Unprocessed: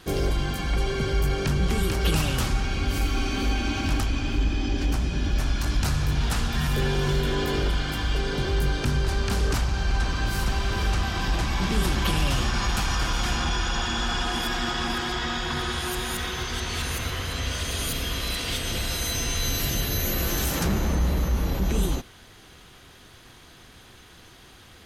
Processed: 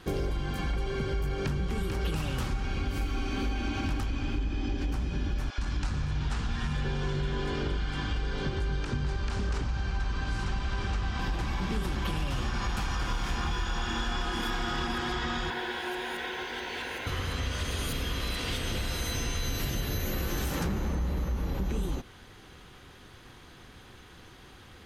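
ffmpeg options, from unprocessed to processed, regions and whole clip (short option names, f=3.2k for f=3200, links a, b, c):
-filter_complex "[0:a]asettb=1/sr,asplit=3[a][b][c];[a]atrim=end=5.504[d];[b]atrim=start=5.5:end=11.19,asetpts=PTS-STARTPTS,afade=t=in:d=0.004:c=qsin,afade=t=out:st=5.686:d=0.004:c=qsin,lowpass=f=8.5k:w=0.5412,lowpass=f=8.5k:w=1.3066,acrossover=split=500[e][f];[e]adelay=80[g];[g][f]amix=inputs=2:normalize=0,atrim=end_sample=250929[h];[c]atrim=start=11.186[i];[d][h]acrossfade=d=0.004:c1=hsin:c2=qsin[j];[j][i]acrossfade=d=0.004:c1=qsin:c2=hsin,asettb=1/sr,asplit=3[k][l][m];[k]atrim=end=13.074[n];[l]atrim=start=13.07:end=14.87,asetpts=PTS-STARTPTS,afade=t=in:d=0.004:c=qsin,afade=t=out:st=1.796:d=0.004:c=qsin,aeval=exprs='0.119*(abs(mod(val(0)/0.119+3,4)-2)-1)':c=same,asplit=2[o][p];[p]adelay=27,volume=-4dB[q];[o][q]amix=inputs=2:normalize=0,atrim=end_sample=79380[r];[m]atrim=start=14.866[s];[n][r]acrossfade=d=0.004:c1=hsin:c2=qsin[t];[t][s]acrossfade=d=0.004:c1=qsin:c2=hsin,asettb=1/sr,asplit=3[u][v][w];[u]atrim=end=15.504[x];[v]atrim=start=15.5:end=17.07,asetpts=PTS-STARTPTS,afade=t=in:d=0.004:c=qsin,afade=t=out:st=1.566:d=0.004:c=qsin,acrusher=bits=5:mix=0:aa=0.5,asuperstop=centerf=1200:order=4:qfactor=4.2,acrossover=split=290 3700:gain=0.0794 1 0.251[y][z][aa];[y][z][aa]amix=inputs=3:normalize=0[ab];[w]atrim=start=17.066[ac];[x][ab]acrossfade=d=0.004:c1=hsin:c2=qsin[ad];[ad][ac]acrossfade=d=0.004:c1=qsin:c2=hsin,highshelf=f=3.4k:g=-8,bandreject=f=660:w=12,acompressor=threshold=-27dB:ratio=6"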